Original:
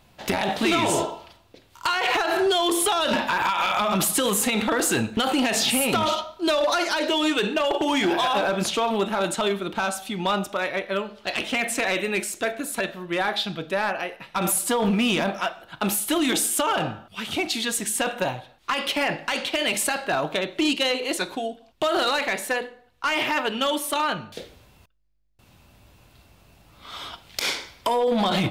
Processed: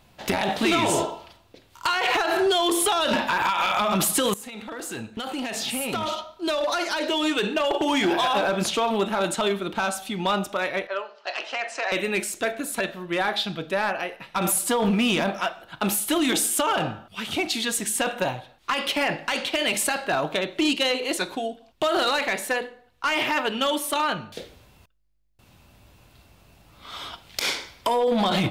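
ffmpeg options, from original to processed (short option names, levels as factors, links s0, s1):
-filter_complex "[0:a]asettb=1/sr,asplit=3[s0][s1][s2];[s0]atrim=end=10.874[s3];[s1]atrim=start=10.87:end=11.92,asetpts=PTS-STARTPTS,afade=t=in:d=0.004:c=qsin,afade=t=out:st=1.046:d=0.004:c=qsin,highpass=f=460:w=0.5412,highpass=f=460:w=1.3066,equalizer=f=470:t=q:w=4:g=-5,equalizer=f=2200:t=q:w=4:g=-6,equalizer=f=3500:t=q:w=4:g=-10,lowpass=f=5700:w=0.5412,lowpass=f=5700:w=1.3066[s4];[s2]atrim=start=11.916[s5];[s3][s4]acrossfade=d=0.004:c1=hsin:c2=qsin[s6];[s6][s5]acrossfade=d=0.004:c1=qsin:c2=hsin,asplit=2[s7][s8];[s7]atrim=end=4.34,asetpts=PTS-STARTPTS,afade=t=out:st=4.336:d=0.004:c=hsin:silence=0.133352[s9];[s8]atrim=start=4.34,asetpts=PTS-STARTPTS,afade=t=in:d=3.55:silence=0.133352[s10];[s9][s10]concat=n=2:v=0:a=1"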